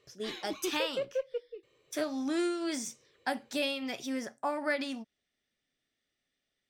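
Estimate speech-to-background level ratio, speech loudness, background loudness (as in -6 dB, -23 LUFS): 3.5 dB, -35.0 LUFS, -38.5 LUFS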